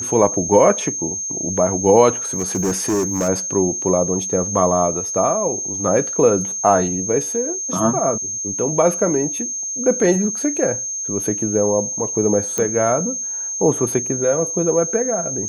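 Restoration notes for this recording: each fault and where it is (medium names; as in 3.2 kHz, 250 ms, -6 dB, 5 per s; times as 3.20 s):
whine 6.4 kHz -23 dBFS
2.33–3.29 s: clipped -15.5 dBFS
12.58 s: pop -7 dBFS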